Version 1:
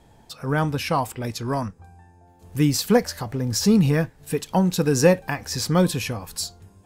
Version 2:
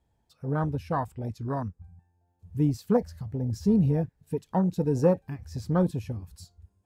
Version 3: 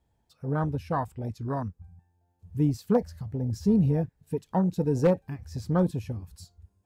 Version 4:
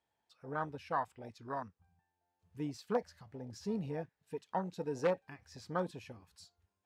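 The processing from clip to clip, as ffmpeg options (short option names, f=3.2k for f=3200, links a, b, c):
-af "equalizer=f=66:w=1.2:g=10,afwtdn=0.0708,volume=-6dB"
-af "aeval=exprs='0.251*(abs(mod(val(0)/0.251+3,4)-2)-1)':c=same"
-af "bandpass=f=2.1k:t=q:w=0.53:csg=0,volume=-1.5dB"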